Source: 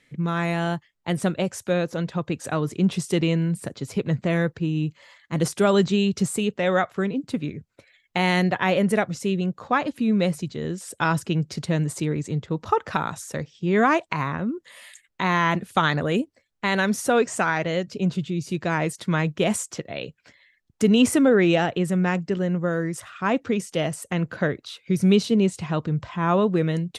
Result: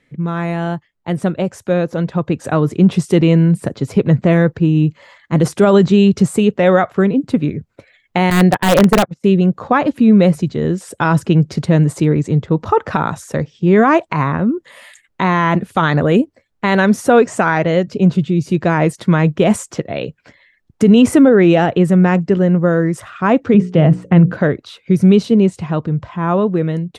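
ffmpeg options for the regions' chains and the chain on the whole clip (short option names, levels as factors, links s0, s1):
-filter_complex "[0:a]asettb=1/sr,asplit=3[s0][s1][s2];[s0]atrim=end=8.304[s3];[s1]atrim=start=8.3:end=9.24,asetpts=PTS-STARTPTS,afade=t=in:d=0.004:c=qsin,afade=t=out:st=0.936:d=0.004:c=qsin,agate=range=0.0398:threshold=0.0501:ratio=16:release=100:detection=peak,aeval=exprs='(mod(4.47*val(0)+1,2)-1)/4.47':c=same[s4];[s2]atrim=start=9.236[s5];[s3][s4]acrossfade=d=0.004:c1=hsin:c2=qsin[s6];[s6][s5]acrossfade=d=0.004:c1=qsin:c2=hsin,asettb=1/sr,asplit=3[s7][s8][s9];[s7]atrim=end=23.544[s10];[s8]atrim=start=23.54:end=24.32,asetpts=PTS-STARTPTS,afade=t=in:d=0.004:c=qsin,afade=t=out:st=0.776:d=0.004:c=qsin,lowpass=3200,equalizer=f=150:t=o:w=1.9:g=10,bandreject=f=60:t=h:w=6,bandreject=f=120:t=h:w=6,bandreject=f=180:t=h:w=6,bandreject=f=240:t=h:w=6,bandreject=f=300:t=h:w=6,bandreject=f=360:t=h:w=6,bandreject=f=420:t=h:w=6,bandreject=f=480:t=h:w=6,bandreject=f=540:t=h:w=6[s11];[s9]atrim=start=24.316[s12];[s10][s11]acrossfade=d=0.004:c1=hsin:c2=qsin[s13];[s13][s12]acrossfade=d=0.004:c1=qsin:c2=hsin,highshelf=f=2100:g=-11,dynaudnorm=f=520:g=9:m=2.66,alimiter=level_in=2.11:limit=0.891:release=50:level=0:latency=1,volume=0.891"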